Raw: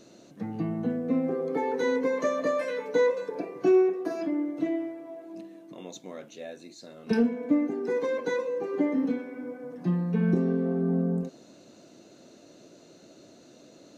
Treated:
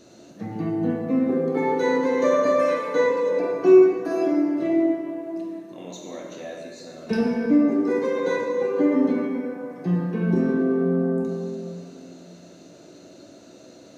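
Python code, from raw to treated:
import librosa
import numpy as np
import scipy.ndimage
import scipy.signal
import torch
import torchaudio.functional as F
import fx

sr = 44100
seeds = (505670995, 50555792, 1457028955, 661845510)

y = fx.rev_plate(x, sr, seeds[0], rt60_s=2.3, hf_ratio=0.6, predelay_ms=0, drr_db=-2.0)
y = y * 10.0 ** (1.5 / 20.0)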